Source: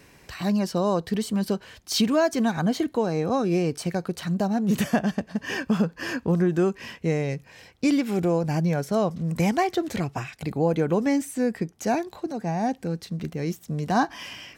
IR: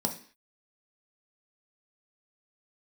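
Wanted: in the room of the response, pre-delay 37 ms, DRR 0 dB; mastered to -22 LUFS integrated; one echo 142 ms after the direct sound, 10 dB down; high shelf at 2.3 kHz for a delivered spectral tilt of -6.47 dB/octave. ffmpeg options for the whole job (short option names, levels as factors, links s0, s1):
-filter_complex "[0:a]highshelf=f=2300:g=8,aecho=1:1:142:0.316,asplit=2[s0][s1];[1:a]atrim=start_sample=2205,adelay=37[s2];[s1][s2]afir=irnorm=-1:irlink=0,volume=0.531[s3];[s0][s3]amix=inputs=2:normalize=0,volume=0.501"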